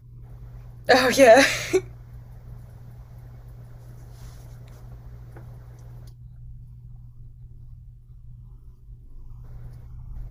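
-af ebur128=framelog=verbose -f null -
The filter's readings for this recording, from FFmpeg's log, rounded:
Integrated loudness:
  I:         -17.4 LUFS
  Threshold: -36.2 LUFS
Loudness range:
  LRA:        25.4 LU
  Threshold: -48.4 LUFS
  LRA low:   -46.4 LUFS
  LRA high:  -21.0 LUFS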